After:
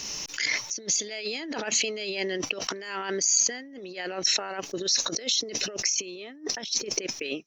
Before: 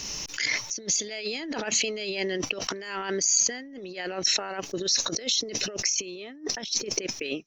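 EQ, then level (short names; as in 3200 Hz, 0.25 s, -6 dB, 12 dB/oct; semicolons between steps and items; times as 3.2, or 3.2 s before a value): low shelf 130 Hz -8.5 dB; 0.0 dB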